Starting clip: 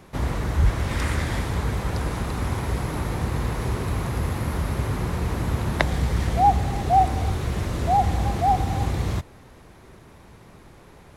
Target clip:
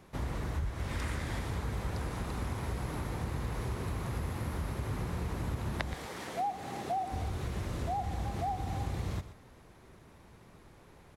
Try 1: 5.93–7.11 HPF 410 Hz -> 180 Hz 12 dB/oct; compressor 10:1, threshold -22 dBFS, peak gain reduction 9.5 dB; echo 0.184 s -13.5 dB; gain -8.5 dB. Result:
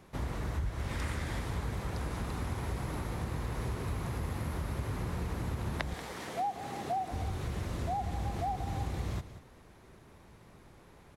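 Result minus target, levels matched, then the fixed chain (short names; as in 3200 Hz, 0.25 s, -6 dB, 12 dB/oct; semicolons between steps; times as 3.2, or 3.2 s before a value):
echo 62 ms late
5.93–7.11 HPF 410 Hz -> 180 Hz 12 dB/oct; compressor 10:1, threshold -22 dBFS, peak gain reduction 9.5 dB; echo 0.122 s -13.5 dB; gain -8.5 dB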